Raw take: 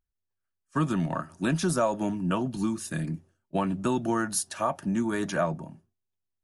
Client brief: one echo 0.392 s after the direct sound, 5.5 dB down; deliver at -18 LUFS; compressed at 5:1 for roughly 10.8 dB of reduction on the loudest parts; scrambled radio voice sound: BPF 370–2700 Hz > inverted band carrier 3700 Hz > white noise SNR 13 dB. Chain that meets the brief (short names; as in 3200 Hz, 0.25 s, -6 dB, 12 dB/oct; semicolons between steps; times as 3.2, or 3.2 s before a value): compressor 5:1, threshold -34 dBFS; BPF 370–2700 Hz; echo 0.392 s -5.5 dB; inverted band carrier 3700 Hz; white noise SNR 13 dB; gain +20.5 dB